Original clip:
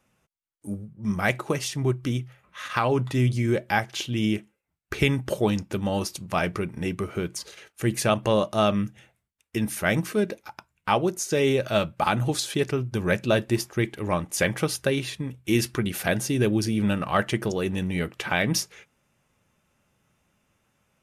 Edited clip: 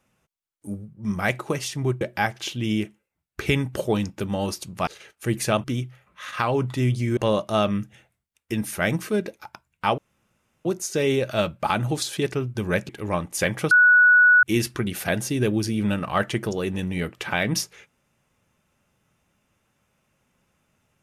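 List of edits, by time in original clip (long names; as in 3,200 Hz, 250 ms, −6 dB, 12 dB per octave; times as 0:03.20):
0:02.01–0:03.54: move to 0:08.21
0:06.40–0:07.44: remove
0:11.02: splice in room tone 0.67 s
0:13.26–0:13.88: remove
0:14.70–0:15.42: beep over 1,470 Hz −11 dBFS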